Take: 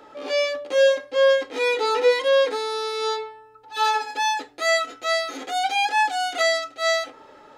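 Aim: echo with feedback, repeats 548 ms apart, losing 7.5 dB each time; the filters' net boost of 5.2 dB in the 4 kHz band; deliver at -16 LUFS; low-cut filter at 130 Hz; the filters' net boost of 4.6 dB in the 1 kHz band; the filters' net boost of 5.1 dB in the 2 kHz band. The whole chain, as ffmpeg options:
-af "highpass=130,equalizer=f=1000:t=o:g=5,equalizer=f=2000:t=o:g=3.5,equalizer=f=4000:t=o:g=5,aecho=1:1:548|1096|1644|2192|2740:0.422|0.177|0.0744|0.0312|0.0131,volume=1.26"

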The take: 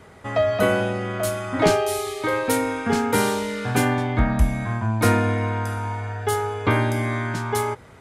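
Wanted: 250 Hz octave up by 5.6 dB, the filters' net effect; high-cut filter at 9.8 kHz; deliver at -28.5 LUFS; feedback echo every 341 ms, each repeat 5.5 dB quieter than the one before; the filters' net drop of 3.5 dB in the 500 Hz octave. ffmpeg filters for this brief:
-af "lowpass=9800,equalizer=f=250:t=o:g=8,equalizer=f=500:t=o:g=-7,aecho=1:1:341|682|1023|1364|1705|2046|2387:0.531|0.281|0.149|0.079|0.0419|0.0222|0.0118,volume=0.398"

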